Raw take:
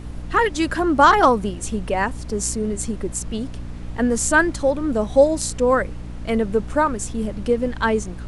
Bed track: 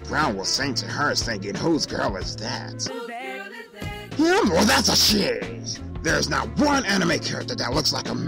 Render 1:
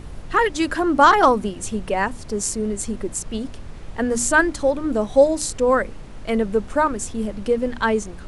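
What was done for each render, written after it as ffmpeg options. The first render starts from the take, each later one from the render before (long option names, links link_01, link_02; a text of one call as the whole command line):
ffmpeg -i in.wav -af "bandreject=frequency=60:width_type=h:width=6,bandreject=frequency=120:width_type=h:width=6,bandreject=frequency=180:width_type=h:width=6,bandreject=frequency=240:width_type=h:width=6,bandreject=frequency=300:width_type=h:width=6" out.wav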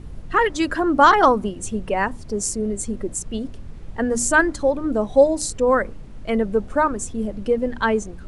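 ffmpeg -i in.wav -af "afftdn=noise_reduction=8:noise_floor=-37" out.wav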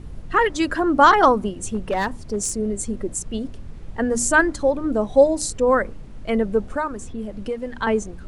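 ffmpeg -i in.wav -filter_complex "[0:a]asettb=1/sr,asplit=3[link_01][link_02][link_03];[link_01]atrim=end=1.544[link_04];[link_02]atrim=start=1.54:end=2.57,asetpts=PTS-STARTPTS,afade=type=in:duration=0.004:curve=qsin,afade=type=out:start_time=1.026:duration=0.004:curve=qsin,asoftclip=type=hard:threshold=-17dB[link_05];[link_03]atrim=start=2.566[link_06];[link_04][link_05]acrossfade=duration=0.004:curve1=hsin:curve2=qsin[link_07];[link_07][link_06]acrossfade=duration=0.004:curve1=qsin:curve2=hsin,asettb=1/sr,asplit=3[link_08][link_09][link_10];[link_08]atrim=end=6.754[link_11];[link_09]atrim=start=6.75:end=7.87,asetpts=PTS-STARTPTS,afade=type=in:duration=0.004:curve=qsin,afade=type=out:start_time=1.116:duration=0.004:curve=qsin,acrossover=split=850|4100[link_12][link_13][link_14];[link_12]acompressor=threshold=-27dB:ratio=4[link_15];[link_13]acompressor=threshold=-25dB:ratio=4[link_16];[link_14]acompressor=threshold=-44dB:ratio=4[link_17];[link_15][link_16][link_17]amix=inputs=3:normalize=0[link_18];[link_10]atrim=start=7.866[link_19];[link_11][link_18]acrossfade=duration=0.004:curve1=hsin:curve2=qsin[link_20];[link_20][link_19]acrossfade=duration=0.004:curve1=qsin:curve2=hsin" out.wav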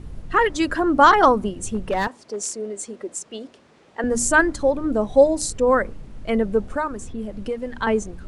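ffmpeg -i in.wav -filter_complex "[0:a]asettb=1/sr,asplit=3[link_01][link_02][link_03];[link_01]atrim=end=2.074[link_04];[link_02]atrim=start=2.07:end=4.04,asetpts=PTS-STARTPTS,afade=type=in:duration=0.004:curve=qsin,afade=type=out:start_time=1.966:duration=0.004:curve=qsin,highpass=410,lowpass=7800[link_05];[link_03]atrim=start=4.036[link_06];[link_04][link_05]acrossfade=duration=0.004:curve1=hsin:curve2=qsin[link_07];[link_07][link_06]acrossfade=duration=0.004:curve1=qsin:curve2=hsin" out.wav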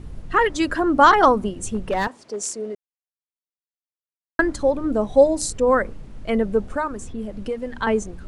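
ffmpeg -i in.wav -filter_complex "[0:a]asplit=3[link_01][link_02][link_03];[link_01]atrim=end=2.75,asetpts=PTS-STARTPTS,afade=type=out:start_time=2.746:duration=0.004:curve=hsin[link_04];[link_02]atrim=start=2.75:end=4.39,asetpts=PTS-STARTPTS,volume=0[link_05];[link_03]atrim=start=4.39,asetpts=PTS-STARTPTS,afade=type=in:duration=0.004:curve=hsin[link_06];[link_04][link_05][link_06]concat=n=3:v=0:a=1" out.wav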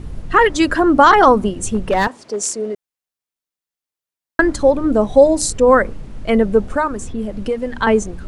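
ffmpeg -i in.wav -af "alimiter=level_in=6.5dB:limit=-1dB:release=50:level=0:latency=1" out.wav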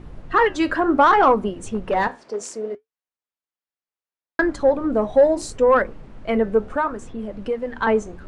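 ffmpeg -i in.wav -filter_complex "[0:a]asplit=2[link_01][link_02];[link_02]highpass=frequency=720:poles=1,volume=9dB,asoftclip=type=tanh:threshold=-0.5dB[link_03];[link_01][link_03]amix=inputs=2:normalize=0,lowpass=frequency=1300:poles=1,volume=-6dB,flanger=delay=5.5:depth=8:regen=-73:speed=0.69:shape=sinusoidal" out.wav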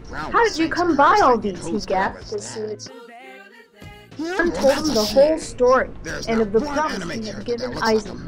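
ffmpeg -i in.wav -i bed.wav -filter_complex "[1:a]volume=-8dB[link_01];[0:a][link_01]amix=inputs=2:normalize=0" out.wav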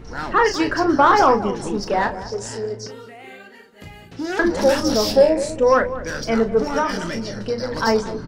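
ffmpeg -i in.wav -filter_complex "[0:a]asplit=2[link_01][link_02];[link_02]adelay=35,volume=-9dB[link_03];[link_01][link_03]amix=inputs=2:normalize=0,asplit=2[link_04][link_05];[link_05]adelay=202,lowpass=frequency=830:poles=1,volume=-11dB,asplit=2[link_06][link_07];[link_07]adelay=202,lowpass=frequency=830:poles=1,volume=0.38,asplit=2[link_08][link_09];[link_09]adelay=202,lowpass=frequency=830:poles=1,volume=0.38,asplit=2[link_10][link_11];[link_11]adelay=202,lowpass=frequency=830:poles=1,volume=0.38[link_12];[link_04][link_06][link_08][link_10][link_12]amix=inputs=5:normalize=0" out.wav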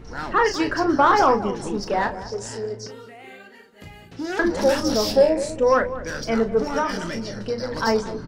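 ffmpeg -i in.wav -af "volume=-2.5dB" out.wav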